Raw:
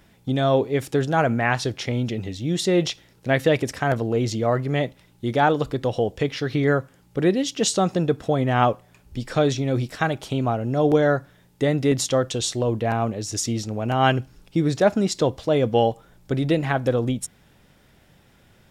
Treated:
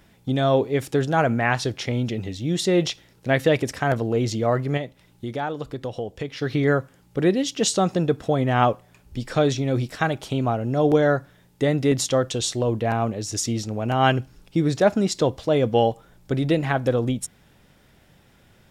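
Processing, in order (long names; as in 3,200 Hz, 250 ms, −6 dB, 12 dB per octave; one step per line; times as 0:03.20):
0:04.77–0:06.42: downward compressor 2 to 1, threshold −32 dBFS, peak gain reduction 10 dB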